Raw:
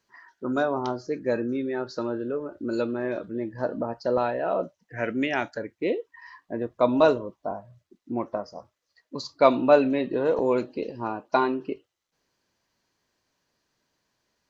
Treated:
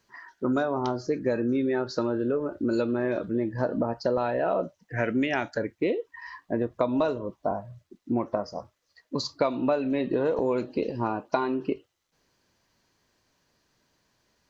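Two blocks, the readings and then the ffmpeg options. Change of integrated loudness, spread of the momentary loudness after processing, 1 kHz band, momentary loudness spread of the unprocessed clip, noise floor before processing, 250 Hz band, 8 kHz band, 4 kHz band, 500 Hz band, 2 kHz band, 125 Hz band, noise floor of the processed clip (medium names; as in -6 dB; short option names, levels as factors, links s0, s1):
-1.5 dB, 7 LU, -3.0 dB, 16 LU, -80 dBFS, +1.0 dB, no reading, 0.0 dB, -2.5 dB, -1.5 dB, +3.5 dB, -74 dBFS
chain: -af "lowshelf=f=160:g=5,acompressor=threshold=0.0501:ratio=10,volume=1.68"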